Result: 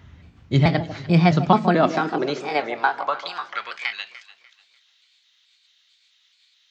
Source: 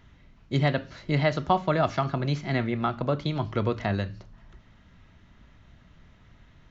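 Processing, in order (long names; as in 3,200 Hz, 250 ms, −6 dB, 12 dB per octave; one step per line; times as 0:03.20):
pitch shifter gated in a rhythm +2.5 semitones, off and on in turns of 218 ms
high-pass filter sweep 79 Hz → 3,800 Hz, 0:00.75–0:04.36
delay that swaps between a low-pass and a high-pass 148 ms, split 980 Hz, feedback 54%, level −11 dB
level +5 dB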